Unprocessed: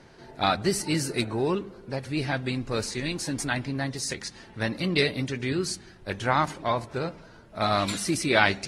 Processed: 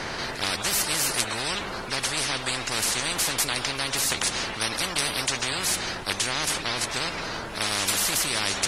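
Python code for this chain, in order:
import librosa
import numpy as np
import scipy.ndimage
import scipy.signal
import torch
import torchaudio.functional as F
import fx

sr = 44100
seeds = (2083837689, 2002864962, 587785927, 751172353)

y = fx.high_shelf(x, sr, hz=8300.0, db=-4.0)
y = fx.spectral_comp(y, sr, ratio=10.0)
y = F.gain(torch.from_numpy(y), -2.0).numpy()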